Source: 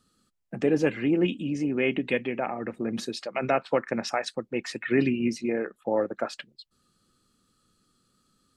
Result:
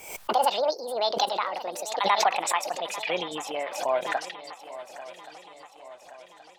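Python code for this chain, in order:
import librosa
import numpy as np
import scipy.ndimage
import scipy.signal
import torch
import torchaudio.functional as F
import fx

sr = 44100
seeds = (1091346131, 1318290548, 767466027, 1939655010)

y = fx.speed_glide(x, sr, from_pct=184, to_pct=76)
y = fx.low_shelf_res(y, sr, hz=500.0, db=-12.0, q=1.5)
y = fx.echo_swing(y, sr, ms=1125, ratio=3, feedback_pct=51, wet_db=-15.0)
y = fx.pre_swell(y, sr, db_per_s=76.0)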